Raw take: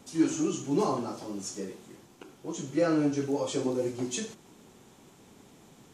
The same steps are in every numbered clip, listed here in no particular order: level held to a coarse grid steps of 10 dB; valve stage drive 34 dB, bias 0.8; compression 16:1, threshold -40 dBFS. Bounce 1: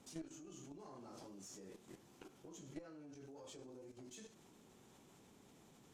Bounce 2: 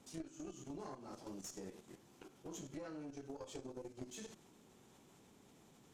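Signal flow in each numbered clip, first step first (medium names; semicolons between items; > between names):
compression > level held to a coarse grid > valve stage; level held to a coarse grid > compression > valve stage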